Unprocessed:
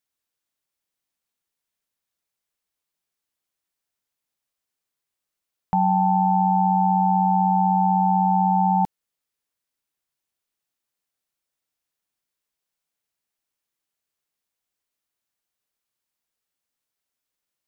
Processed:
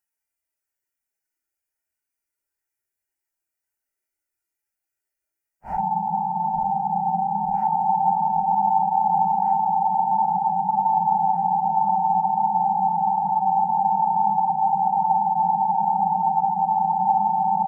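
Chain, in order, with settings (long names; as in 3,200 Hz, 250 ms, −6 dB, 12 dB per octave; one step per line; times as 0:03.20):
phaser with its sweep stopped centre 730 Hz, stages 8
comb filter 2.1 ms, depth 48%
echo with a time of its own for lows and highs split 860 Hz, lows 201 ms, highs 428 ms, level −4.5 dB
extreme stretch with random phases 4.4×, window 0.05 s, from 0:04.43
level −1.5 dB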